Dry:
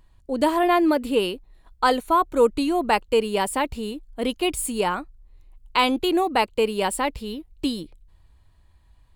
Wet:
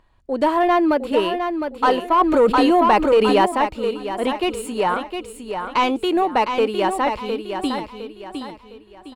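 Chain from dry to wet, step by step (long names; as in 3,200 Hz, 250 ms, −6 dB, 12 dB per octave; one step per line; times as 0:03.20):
mid-hump overdrive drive 14 dB, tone 1,300 Hz, clips at −6 dBFS
on a send: repeating echo 709 ms, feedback 36%, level −7 dB
0:02.18–0:03.46: on the sum: envelope flattener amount 70%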